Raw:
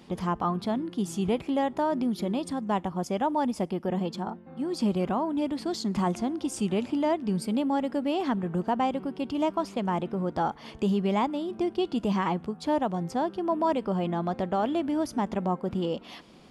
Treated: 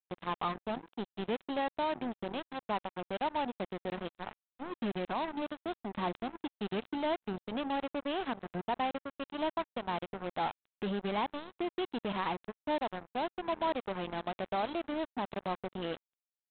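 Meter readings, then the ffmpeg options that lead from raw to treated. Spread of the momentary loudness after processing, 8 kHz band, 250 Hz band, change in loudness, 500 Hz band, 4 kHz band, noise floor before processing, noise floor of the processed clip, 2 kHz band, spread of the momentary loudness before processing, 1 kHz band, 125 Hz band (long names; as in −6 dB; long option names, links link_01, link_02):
6 LU, below −35 dB, −11.5 dB, −8.0 dB, −7.0 dB, −2.5 dB, −48 dBFS, below −85 dBFS, −1.0 dB, 4 LU, −5.5 dB, −13.0 dB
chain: -af "highpass=frequency=61:poles=1,lowshelf=frequency=320:gain=-8.5,aresample=8000,acrusher=bits=4:mix=0:aa=0.5,aresample=44100,volume=-5dB"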